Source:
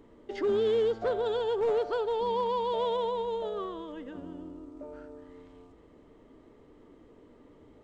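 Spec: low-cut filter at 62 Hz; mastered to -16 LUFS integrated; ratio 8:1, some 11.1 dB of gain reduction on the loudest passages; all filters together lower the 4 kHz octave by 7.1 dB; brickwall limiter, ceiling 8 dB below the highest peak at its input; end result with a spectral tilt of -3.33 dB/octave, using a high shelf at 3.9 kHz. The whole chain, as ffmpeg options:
-af "highpass=62,highshelf=f=3900:g=-8.5,equalizer=f=4000:t=o:g=-4.5,acompressor=threshold=0.0158:ratio=8,volume=23.7,alimiter=limit=0.376:level=0:latency=1"

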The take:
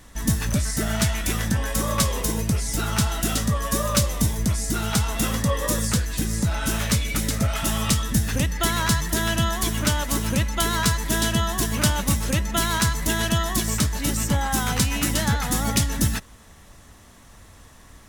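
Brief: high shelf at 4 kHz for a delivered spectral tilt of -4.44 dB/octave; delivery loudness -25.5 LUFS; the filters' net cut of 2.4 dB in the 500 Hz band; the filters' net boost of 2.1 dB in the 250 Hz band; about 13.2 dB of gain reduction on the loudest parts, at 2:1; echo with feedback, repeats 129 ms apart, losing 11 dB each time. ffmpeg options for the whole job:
-af "equalizer=f=250:t=o:g=3.5,equalizer=f=500:t=o:g=-4,highshelf=f=4000:g=-4.5,acompressor=threshold=0.00891:ratio=2,aecho=1:1:129|258|387:0.282|0.0789|0.0221,volume=2.99"

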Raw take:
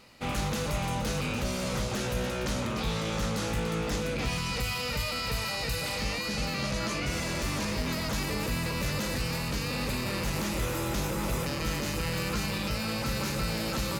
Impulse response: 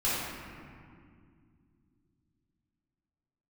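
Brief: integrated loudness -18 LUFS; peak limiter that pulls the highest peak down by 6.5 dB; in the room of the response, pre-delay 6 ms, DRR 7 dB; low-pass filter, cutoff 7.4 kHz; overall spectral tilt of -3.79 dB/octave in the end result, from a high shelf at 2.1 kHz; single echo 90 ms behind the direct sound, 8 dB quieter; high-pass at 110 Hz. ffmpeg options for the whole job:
-filter_complex "[0:a]highpass=110,lowpass=7400,highshelf=f=2100:g=4.5,alimiter=level_in=1.06:limit=0.0631:level=0:latency=1,volume=0.944,aecho=1:1:90:0.398,asplit=2[s0][s1];[1:a]atrim=start_sample=2205,adelay=6[s2];[s1][s2]afir=irnorm=-1:irlink=0,volume=0.133[s3];[s0][s3]amix=inputs=2:normalize=0,volume=4.73"

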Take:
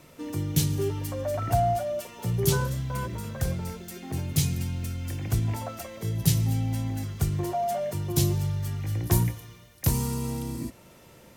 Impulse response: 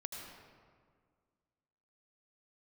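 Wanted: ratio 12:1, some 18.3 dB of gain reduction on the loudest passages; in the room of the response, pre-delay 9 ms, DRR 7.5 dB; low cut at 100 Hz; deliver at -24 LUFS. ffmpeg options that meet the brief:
-filter_complex "[0:a]highpass=100,acompressor=threshold=0.0141:ratio=12,asplit=2[s0][s1];[1:a]atrim=start_sample=2205,adelay=9[s2];[s1][s2]afir=irnorm=-1:irlink=0,volume=0.501[s3];[s0][s3]amix=inputs=2:normalize=0,volume=6.31"

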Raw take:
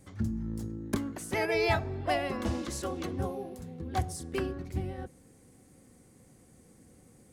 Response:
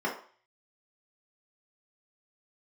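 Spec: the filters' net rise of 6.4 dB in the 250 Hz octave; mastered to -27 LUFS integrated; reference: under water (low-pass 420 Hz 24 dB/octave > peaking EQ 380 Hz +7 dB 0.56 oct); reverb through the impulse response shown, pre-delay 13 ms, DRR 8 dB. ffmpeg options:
-filter_complex "[0:a]equalizer=f=250:t=o:g=5.5,asplit=2[s0][s1];[1:a]atrim=start_sample=2205,adelay=13[s2];[s1][s2]afir=irnorm=-1:irlink=0,volume=0.133[s3];[s0][s3]amix=inputs=2:normalize=0,lowpass=f=420:w=0.5412,lowpass=f=420:w=1.3066,equalizer=f=380:t=o:w=0.56:g=7,volume=1.33"

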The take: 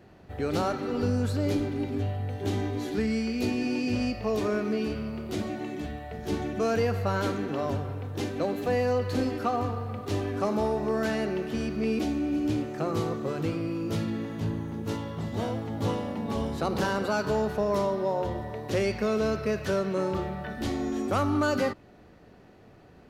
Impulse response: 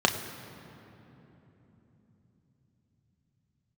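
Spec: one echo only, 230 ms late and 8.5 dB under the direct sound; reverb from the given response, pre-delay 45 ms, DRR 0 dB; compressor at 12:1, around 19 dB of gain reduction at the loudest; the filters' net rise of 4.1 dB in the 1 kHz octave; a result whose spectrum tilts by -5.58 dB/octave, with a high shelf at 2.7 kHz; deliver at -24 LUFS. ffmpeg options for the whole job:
-filter_complex "[0:a]equalizer=f=1000:t=o:g=6,highshelf=f=2700:g=-4.5,acompressor=threshold=0.01:ratio=12,aecho=1:1:230:0.376,asplit=2[s0][s1];[1:a]atrim=start_sample=2205,adelay=45[s2];[s1][s2]afir=irnorm=-1:irlink=0,volume=0.188[s3];[s0][s3]amix=inputs=2:normalize=0,volume=5.96"

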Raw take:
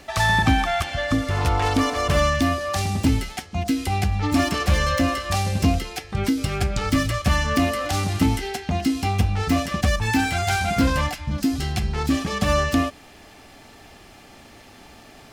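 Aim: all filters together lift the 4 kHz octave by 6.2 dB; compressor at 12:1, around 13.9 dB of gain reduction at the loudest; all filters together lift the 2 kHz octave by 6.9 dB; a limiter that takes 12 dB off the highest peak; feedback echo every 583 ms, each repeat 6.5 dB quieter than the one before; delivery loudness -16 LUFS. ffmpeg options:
-af "equalizer=f=2000:t=o:g=7,equalizer=f=4000:t=o:g=5.5,acompressor=threshold=0.0447:ratio=12,alimiter=level_in=1.06:limit=0.0631:level=0:latency=1,volume=0.944,aecho=1:1:583|1166|1749|2332|2915|3498:0.473|0.222|0.105|0.0491|0.0231|0.0109,volume=7.08"

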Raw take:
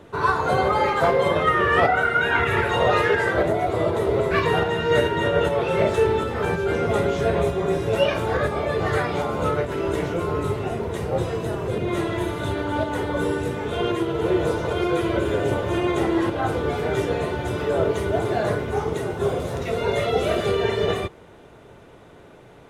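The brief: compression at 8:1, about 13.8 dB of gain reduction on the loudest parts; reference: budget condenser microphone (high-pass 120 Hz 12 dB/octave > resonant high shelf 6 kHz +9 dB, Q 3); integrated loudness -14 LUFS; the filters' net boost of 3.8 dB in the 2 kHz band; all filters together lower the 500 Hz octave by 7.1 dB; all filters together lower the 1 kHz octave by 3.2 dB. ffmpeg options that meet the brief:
-af "equalizer=f=500:t=o:g=-8.5,equalizer=f=1000:t=o:g=-4,equalizer=f=2000:t=o:g=8,acompressor=threshold=0.0355:ratio=8,highpass=120,highshelf=f=6000:t=q:w=3:g=9,volume=8.91"

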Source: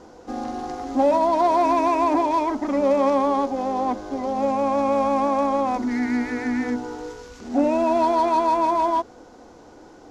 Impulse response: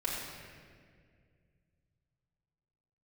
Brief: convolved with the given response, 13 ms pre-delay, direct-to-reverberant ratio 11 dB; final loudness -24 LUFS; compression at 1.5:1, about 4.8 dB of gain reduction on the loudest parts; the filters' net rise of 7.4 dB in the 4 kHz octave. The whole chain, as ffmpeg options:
-filter_complex "[0:a]equalizer=f=4000:t=o:g=9,acompressor=threshold=0.0355:ratio=1.5,asplit=2[s0][s1];[1:a]atrim=start_sample=2205,adelay=13[s2];[s1][s2]afir=irnorm=-1:irlink=0,volume=0.15[s3];[s0][s3]amix=inputs=2:normalize=0,volume=1.19"

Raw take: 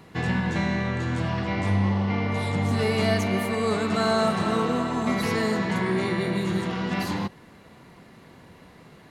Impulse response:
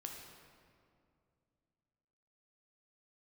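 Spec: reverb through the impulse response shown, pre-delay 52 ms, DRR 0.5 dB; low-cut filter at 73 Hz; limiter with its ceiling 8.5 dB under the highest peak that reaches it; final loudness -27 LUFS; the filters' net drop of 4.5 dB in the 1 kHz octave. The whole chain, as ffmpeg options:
-filter_complex "[0:a]highpass=73,equalizer=f=1000:t=o:g=-6,alimiter=limit=0.0944:level=0:latency=1,asplit=2[s0][s1];[1:a]atrim=start_sample=2205,adelay=52[s2];[s1][s2]afir=irnorm=-1:irlink=0,volume=1.33[s3];[s0][s3]amix=inputs=2:normalize=0,volume=0.944"

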